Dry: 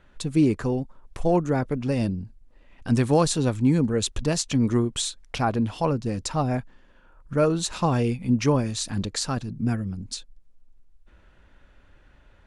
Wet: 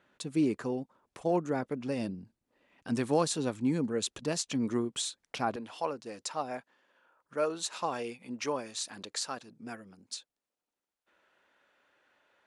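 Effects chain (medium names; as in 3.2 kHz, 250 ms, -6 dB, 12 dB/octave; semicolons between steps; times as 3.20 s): high-pass 210 Hz 12 dB/octave, from 5.56 s 470 Hz; trim -6.5 dB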